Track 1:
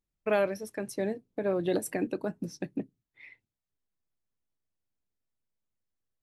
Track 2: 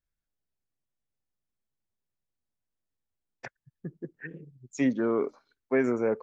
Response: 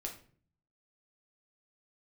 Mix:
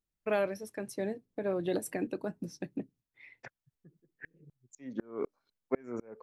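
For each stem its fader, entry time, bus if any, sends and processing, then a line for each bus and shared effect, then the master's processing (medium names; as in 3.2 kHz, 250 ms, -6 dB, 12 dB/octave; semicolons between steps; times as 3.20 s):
-3.5 dB, 0.00 s, no send, none
-1.0 dB, 0.00 s, no send, sawtooth tremolo in dB swelling 4 Hz, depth 36 dB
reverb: none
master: none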